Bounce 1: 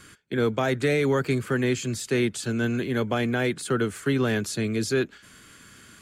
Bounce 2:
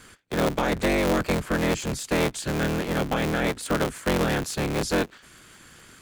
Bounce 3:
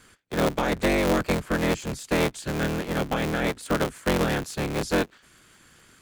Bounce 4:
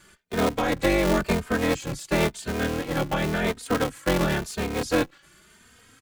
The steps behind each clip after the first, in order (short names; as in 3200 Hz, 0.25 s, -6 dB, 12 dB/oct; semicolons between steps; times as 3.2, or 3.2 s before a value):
cycle switcher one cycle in 3, inverted
upward expander 1.5:1, over -33 dBFS; gain +1 dB
endless flanger 3 ms +0.94 Hz; gain +3.5 dB